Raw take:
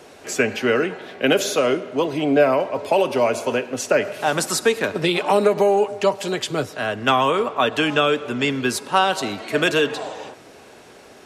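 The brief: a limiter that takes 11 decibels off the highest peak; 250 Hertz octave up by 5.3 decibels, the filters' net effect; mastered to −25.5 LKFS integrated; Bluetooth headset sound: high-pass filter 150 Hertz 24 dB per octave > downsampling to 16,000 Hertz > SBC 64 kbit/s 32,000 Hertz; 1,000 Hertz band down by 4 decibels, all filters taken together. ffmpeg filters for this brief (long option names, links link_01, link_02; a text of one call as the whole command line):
ffmpeg -i in.wav -af "equalizer=frequency=250:width_type=o:gain=7,equalizer=frequency=1000:width_type=o:gain=-6,alimiter=limit=-15.5dB:level=0:latency=1,highpass=frequency=150:width=0.5412,highpass=frequency=150:width=1.3066,aresample=16000,aresample=44100,volume=-0.5dB" -ar 32000 -c:a sbc -b:a 64k out.sbc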